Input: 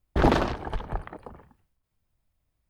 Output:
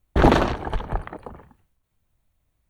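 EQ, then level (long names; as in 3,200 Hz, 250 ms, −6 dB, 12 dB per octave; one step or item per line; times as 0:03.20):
notch filter 5,000 Hz, Q 7.4
+5.0 dB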